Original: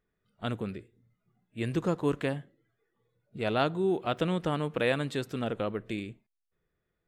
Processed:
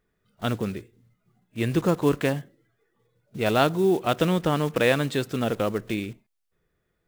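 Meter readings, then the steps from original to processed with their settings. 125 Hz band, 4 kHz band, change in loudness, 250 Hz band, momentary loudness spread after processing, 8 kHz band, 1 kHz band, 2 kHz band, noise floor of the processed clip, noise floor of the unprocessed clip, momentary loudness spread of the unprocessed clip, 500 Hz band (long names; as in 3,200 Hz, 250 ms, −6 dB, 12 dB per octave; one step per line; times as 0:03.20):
+6.5 dB, +6.5 dB, +6.5 dB, +6.5 dB, 11 LU, can't be measured, +6.5 dB, +6.5 dB, −76 dBFS, −82 dBFS, 11 LU, +6.5 dB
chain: one scale factor per block 5 bits
level +6.5 dB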